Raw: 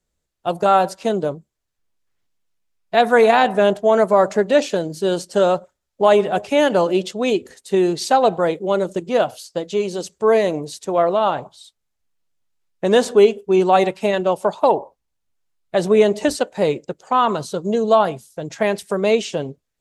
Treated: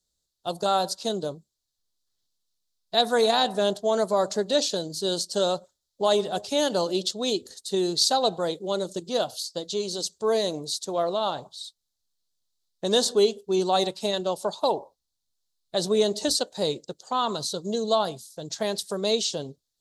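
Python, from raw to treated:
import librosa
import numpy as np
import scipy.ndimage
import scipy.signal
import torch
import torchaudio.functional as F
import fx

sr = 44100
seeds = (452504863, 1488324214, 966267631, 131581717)

y = fx.high_shelf_res(x, sr, hz=3100.0, db=9.5, q=3.0)
y = y * 10.0 ** (-8.5 / 20.0)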